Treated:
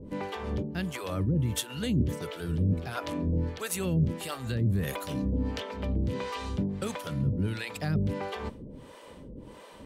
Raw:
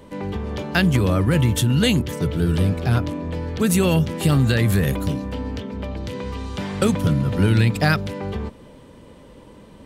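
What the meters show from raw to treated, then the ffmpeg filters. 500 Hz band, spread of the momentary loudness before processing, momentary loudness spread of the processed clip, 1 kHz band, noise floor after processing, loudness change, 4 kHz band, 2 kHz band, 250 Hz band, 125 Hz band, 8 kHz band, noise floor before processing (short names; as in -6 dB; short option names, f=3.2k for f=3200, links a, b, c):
-10.5 dB, 12 LU, 16 LU, -9.0 dB, -49 dBFS, -10.0 dB, -11.0 dB, -13.0 dB, -10.0 dB, -10.0 dB, -8.5 dB, -45 dBFS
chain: -filter_complex "[0:a]areverse,acompressor=threshold=-25dB:ratio=10,areverse,acrossover=split=460[a][b];[a]aeval=exprs='val(0)*(1-1/2+1/2*cos(2*PI*1.5*n/s))':c=same[c];[b]aeval=exprs='val(0)*(1-1/2-1/2*cos(2*PI*1.5*n/s))':c=same[d];[c][d]amix=inputs=2:normalize=0,volume=3.5dB"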